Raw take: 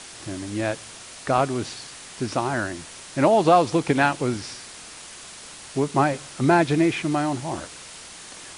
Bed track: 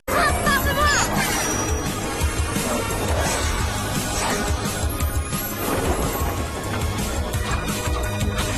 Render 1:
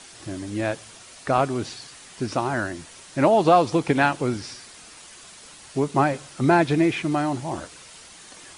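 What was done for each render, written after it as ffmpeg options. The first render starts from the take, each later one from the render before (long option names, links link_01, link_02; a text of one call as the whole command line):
ffmpeg -i in.wav -af "afftdn=noise_reduction=6:noise_floor=-42" out.wav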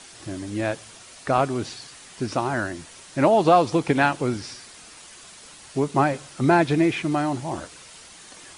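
ffmpeg -i in.wav -af anull out.wav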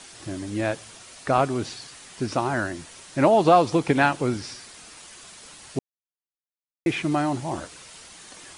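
ffmpeg -i in.wav -filter_complex "[0:a]asplit=3[link_01][link_02][link_03];[link_01]atrim=end=5.79,asetpts=PTS-STARTPTS,afade=type=out:start_time=5.786:duration=0.004:curve=hsin[link_04];[link_02]atrim=start=5.79:end=6.86,asetpts=PTS-STARTPTS,volume=0[link_05];[link_03]atrim=start=6.86,asetpts=PTS-STARTPTS,afade=type=in:duration=0.004:curve=hsin[link_06];[link_04][link_05][link_06]concat=n=3:v=0:a=1" out.wav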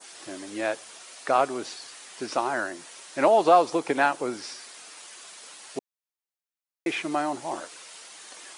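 ffmpeg -i in.wav -af "highpass=410,adynamicequalizer=threshold=0.01:dfrequency=3000:dqfactor=0.73:tfrequency=3000:tqfactor=0.73:attack=5:release=100:ratio=0.375:range=3:mode=cutabove:tftype=bell" out.wav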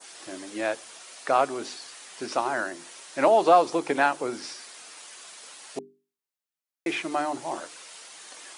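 ffmpeg -i in.wav -af "highpass=86,bandreject=frequency=50:width_type=h:width=6,bandreject=frequency=100:width_type=h:width=6,bandreject=frequency=150:width_type=h:width=6,bandreject=frequency=200:width_type=h:width=6,bandreject=frequency=250:width_type=h:width=6,bandreject=frequency=300:width_type=h:width=6,bandreject=frequency=350:width_type=h:width=6,bandreject=frequency=400:width_type=h:width=6" out.wav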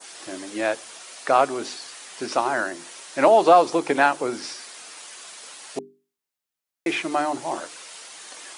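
ffmpeg -i in.wav -af "volume=4dB,alimiter=limit=-3dB:level=0:latency=1" out.wav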